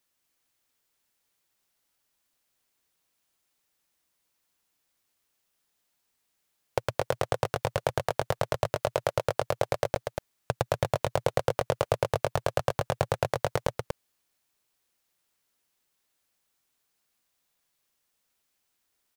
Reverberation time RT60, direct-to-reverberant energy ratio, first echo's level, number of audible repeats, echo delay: none, none, -5.0 dB, 1, 0.239 s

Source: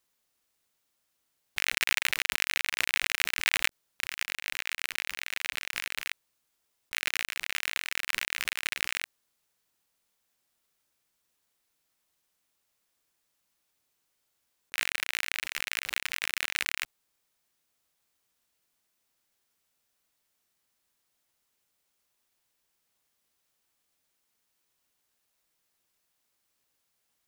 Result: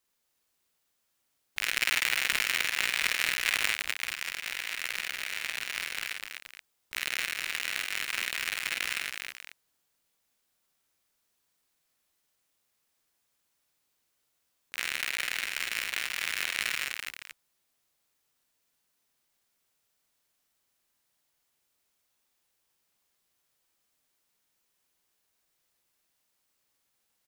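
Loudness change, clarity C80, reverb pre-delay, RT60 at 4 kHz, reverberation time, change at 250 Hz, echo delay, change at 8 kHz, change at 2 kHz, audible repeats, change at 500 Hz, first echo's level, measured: +0.5 dB, none, none, none, none, +0.5 dB, 49 ms, +0.5 dB, +0.5 dB, 3, +0.5 dB, -3.5 dB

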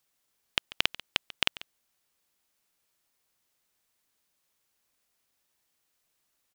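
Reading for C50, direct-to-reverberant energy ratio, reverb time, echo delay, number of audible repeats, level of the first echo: none, none, none, 0.141 s, 1, -17.5 dB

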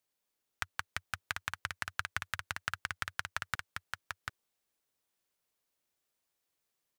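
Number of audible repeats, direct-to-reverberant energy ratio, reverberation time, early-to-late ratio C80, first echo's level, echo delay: 1, none, none, none, -4.5 dB, 0.742 s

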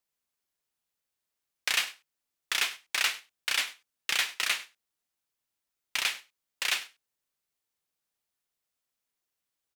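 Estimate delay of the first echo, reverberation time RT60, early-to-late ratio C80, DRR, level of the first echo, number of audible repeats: 99 ms, none, none, none, -19.5 dB, 1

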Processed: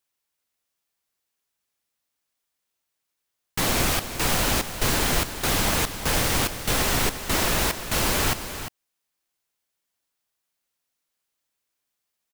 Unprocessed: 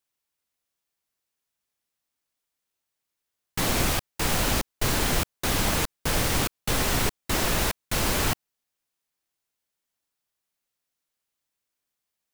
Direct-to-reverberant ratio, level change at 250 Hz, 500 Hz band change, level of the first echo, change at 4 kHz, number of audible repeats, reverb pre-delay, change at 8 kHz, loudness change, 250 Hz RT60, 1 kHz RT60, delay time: none, +1.0 dB, +2.0 dB, -11.0 dB, +3.0 dB, 1, none, +3.0 dB, +2.5 dB, none, none, 0.35 s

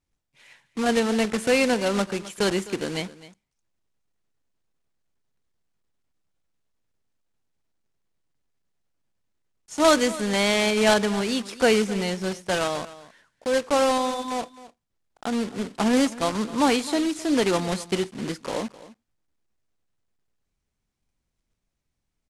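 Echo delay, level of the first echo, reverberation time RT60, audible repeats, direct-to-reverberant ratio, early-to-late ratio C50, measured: 0.259 s, -17.5 dB, none, 1, none, none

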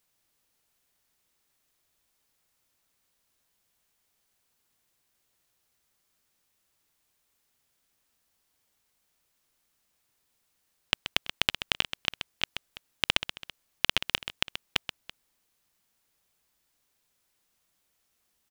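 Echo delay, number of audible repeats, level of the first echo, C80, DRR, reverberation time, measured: 0.13 s, 2, -10.5 dB, none, none, none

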